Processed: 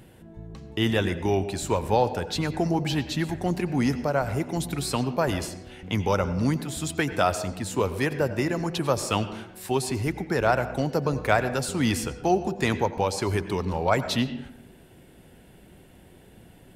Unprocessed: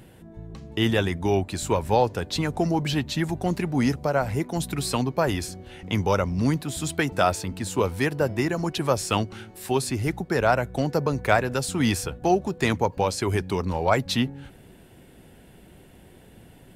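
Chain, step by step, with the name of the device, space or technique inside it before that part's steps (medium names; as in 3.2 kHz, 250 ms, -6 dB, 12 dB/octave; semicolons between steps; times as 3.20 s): filtered reverb send (on a send: high-pass 150 Hz + low-pass 6.9 kHz 12 dB/octave + reverberation RT60 0.75 s, pre-delay 83 ms, DRR 11.5 dB); on the sum: trim -1.5 dB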